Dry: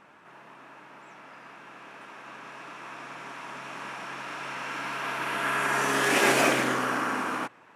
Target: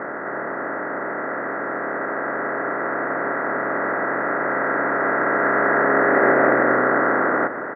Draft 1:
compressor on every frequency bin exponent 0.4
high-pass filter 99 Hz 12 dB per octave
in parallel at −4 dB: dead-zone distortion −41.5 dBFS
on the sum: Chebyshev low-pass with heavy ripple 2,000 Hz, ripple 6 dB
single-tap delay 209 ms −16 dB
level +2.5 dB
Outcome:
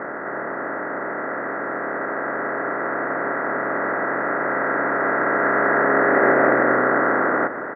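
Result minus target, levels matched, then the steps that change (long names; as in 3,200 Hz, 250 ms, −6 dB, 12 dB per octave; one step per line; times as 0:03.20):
dead-zone distortion: distortion +7 dB
change: dead-zone distortion −49 dBFS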